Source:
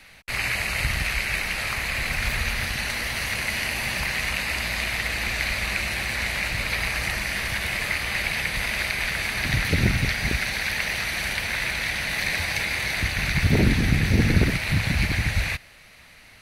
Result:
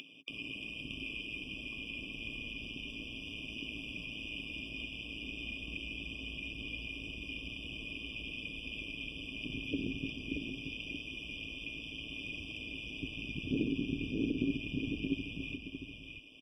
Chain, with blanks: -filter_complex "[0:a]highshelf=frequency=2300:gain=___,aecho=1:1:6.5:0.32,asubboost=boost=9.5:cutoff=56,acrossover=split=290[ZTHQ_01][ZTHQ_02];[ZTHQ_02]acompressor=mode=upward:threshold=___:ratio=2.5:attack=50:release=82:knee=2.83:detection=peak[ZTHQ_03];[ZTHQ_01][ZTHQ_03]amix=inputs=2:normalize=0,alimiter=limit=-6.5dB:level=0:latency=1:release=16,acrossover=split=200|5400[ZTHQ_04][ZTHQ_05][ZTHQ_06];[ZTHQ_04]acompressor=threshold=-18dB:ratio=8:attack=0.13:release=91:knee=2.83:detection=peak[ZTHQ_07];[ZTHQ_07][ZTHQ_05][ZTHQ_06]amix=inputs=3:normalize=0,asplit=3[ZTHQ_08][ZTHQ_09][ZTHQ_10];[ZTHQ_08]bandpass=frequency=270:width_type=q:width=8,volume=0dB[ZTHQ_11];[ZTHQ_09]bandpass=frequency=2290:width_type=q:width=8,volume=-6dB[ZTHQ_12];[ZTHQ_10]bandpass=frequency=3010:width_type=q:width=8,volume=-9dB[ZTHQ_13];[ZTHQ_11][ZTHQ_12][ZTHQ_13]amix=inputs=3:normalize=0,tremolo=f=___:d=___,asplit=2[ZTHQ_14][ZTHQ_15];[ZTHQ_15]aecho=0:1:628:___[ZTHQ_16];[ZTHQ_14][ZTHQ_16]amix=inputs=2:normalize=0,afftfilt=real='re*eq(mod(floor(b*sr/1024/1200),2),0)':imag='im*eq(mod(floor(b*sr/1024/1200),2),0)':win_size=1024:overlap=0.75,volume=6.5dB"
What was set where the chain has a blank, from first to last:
-6.5, -36dB, 110, 0.621, 0.531